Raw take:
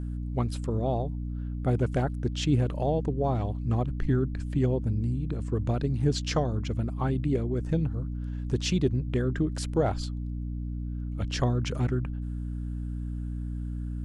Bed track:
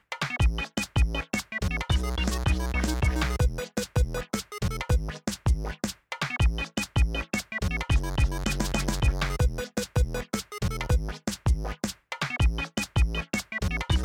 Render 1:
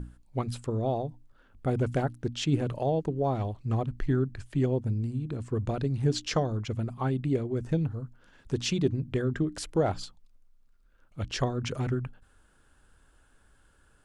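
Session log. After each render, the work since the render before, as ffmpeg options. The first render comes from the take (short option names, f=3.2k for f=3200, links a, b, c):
-af "bandreject=f=60:t=h:w=6,bandreject=f=120:t=h:w=6,bandreject=f=180:t=h:w=6,bandreject=f=240:t=h:w=6,bandreject=f=300:t=h:w=6"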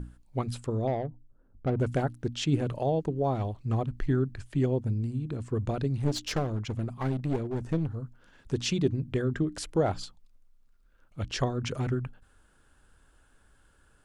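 -filter_complex "[0:a]asettb=1/sr,asplit=3[a][b][c];[a]atrim=end=0.874[d];[b]atrim=start=0.87:end=1.8,asetpts=PTS-STARTPTS,afade=t=in:d=0.004:c=qsin,afade=t=out:st=0.926:d=0.004:c=qsin,adynamicsmooth=sensitivity=2.5:basefreq=590[e];[c]atrim=start=1.796[f];[d][e]acrossfade=d=0.004:c1=hsin:c2=qsin[g];[g][f]acrossfade=d=0.004:c1=qsin:c2=hsin,asettb=1/sr,asplit=3[h][i][j];[h]atrim=end=6.034[k];[i]atrim=start=6.03:end=7.96,asetpts=PTS-STARTPTS,afade=t=in:d=0.004:c=qsin,afade=t=out:st=1.926:d=0.004:c=qsin,aeval=exprs='clip(val(0),-1,0.0266)':c=same[l];[j]atrim=start=7.956[m];[k][l]acrossfade=d=0.004:c1=hsin:c2=qsin[n];[n][m]acrossfade=d=0.004:c1=qsin:c2=hsin"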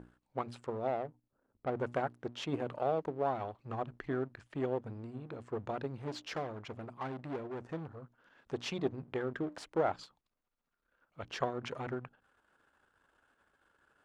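-af "aeval=exprs='if(lt(val(0),0),0.447*val(0),val(0))':c=same,bandpass=f=1k:t=q:w=0.53:csg=0"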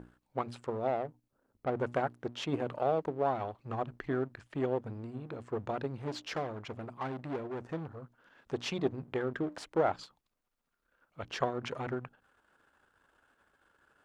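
-af "volume=2.5dB"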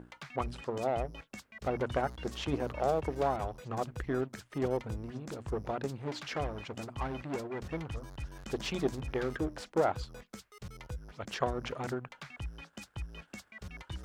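-filter_complex "[1:a]volume=-17.5dB[a];[0:a][a]amix=inputs=2:normalize=0"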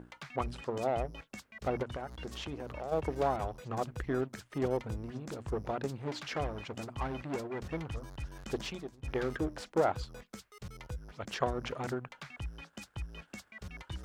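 -filter_complex "[0:a]asplit=3[a][b][c];[a]afade=t=out:st=1.82:d=0.02[d];[b]acompressor=threshold=-37dB:ratio=4:attack=3.2:release=140:knee=1:detection=peak,afade=t=in:st=1.82:d=0.02,afade=t=out:st=2.91:d=0.02[e];[c]afade=t=in:st=2.91:d=0.02[f];[d][e][f]amix=inputs=3:normalize=0,asplit=2[g][h];[g]atrim=end=9.03,asetpts=PTS-STARTPTS,afade=t=out:st=8.59:d=0.44:c=qua:silence=0.0891251[i];[h]atrim=start=9.03,asetpts=PTS-STARTPTS,afade=t=in:d=0.004:c=hsin:silence=0.0891251[j];[i][j]concat=n=2:v=0:a=1"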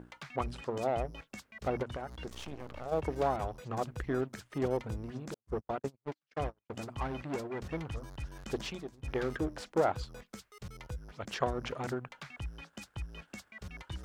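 -filter_complex "[0:a]asettb=1/sr,asplit=3[a][b][c];[a]atrim=end=2.284[d];[b]atrim=start=2.28:end=2.86,asetpts=PTS-STARTPTS,afade=t=in:d=0.004:c=qsin,afade=t=out:st=0.576:d=0.004:c=qsin,aeval=exprs='max(val(0),0)':c=same[e];[c]atrim=start=2.856[f];[d][e]acrossfade=d=0.004:c1=hsin:c2=qsin[g];[g][f]acrossfade=d=0.004:c1=qsin:c2=hsin,asettb=1/sr,asplit=3[h][i][j];[h]atrim=end=5.344[k];[i]atrim=start=5.34:end=6.7,asetpts=PTS-STARTPTS,afade=t=in:d=0.004:c=qsin,afade=t=out:st=1.356:d=0.004:c=qsin,agate=range=-51dB:threshold=-36dB:ratio=16:release=100:detection=peak[l];[j]atrim=start=6.696[m];[k][l]acrossfade=d=0.004:c1=hsin:c2=qsin[n];[n][m]acrossfade=d=0.004:c1=qsin:c2=hsin"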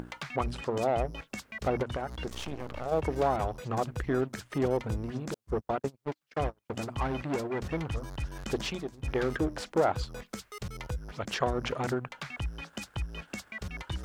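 -filter_complex "[0:a]asplit=2[a][b];[b]alimiter=level_in=3dB:limit=-24dB:level=0:latency=1:release=76,volume=-3dB,volume=-0.5dB[c];[a][c]amix=inputs=2:normalize=0,acompressor=mode=upward:threshold=-34dB:ratio=2.5"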